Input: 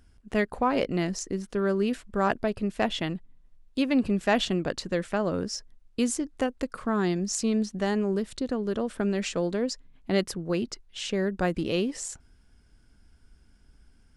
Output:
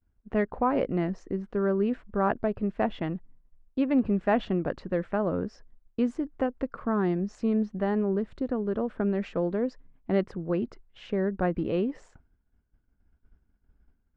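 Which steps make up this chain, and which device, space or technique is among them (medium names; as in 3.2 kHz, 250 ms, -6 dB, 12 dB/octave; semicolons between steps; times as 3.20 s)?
hearing-loss simulation (low-pass 1.5 kHz 12 dB/octave; expander -48 dBFS)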